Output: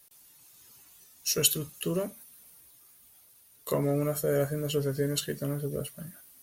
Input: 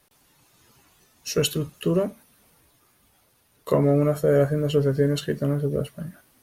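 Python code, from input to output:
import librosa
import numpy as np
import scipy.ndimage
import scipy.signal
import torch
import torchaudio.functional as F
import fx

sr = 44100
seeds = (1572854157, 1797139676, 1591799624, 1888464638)

y = F.preemphasis(torch.from_numpy(x), 0.8).numpy()
y = y * librosa.db_to_amplitude(5.5)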